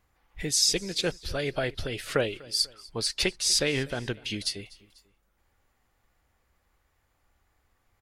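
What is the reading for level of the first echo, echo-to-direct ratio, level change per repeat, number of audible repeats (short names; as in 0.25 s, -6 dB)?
-22.5 dB, -21.5 dB, -6.0 dB, 2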